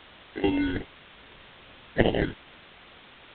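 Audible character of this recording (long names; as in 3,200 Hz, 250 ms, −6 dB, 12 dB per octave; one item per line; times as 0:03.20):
aliases and images of a low sample rate 1,200 Hz, jitter 0%
phaser sweep stages 12, 2.5 Hz, lowest notch 750–1,500 Hz
a quantiser's noise floor 8 bits, dither triangular
G.726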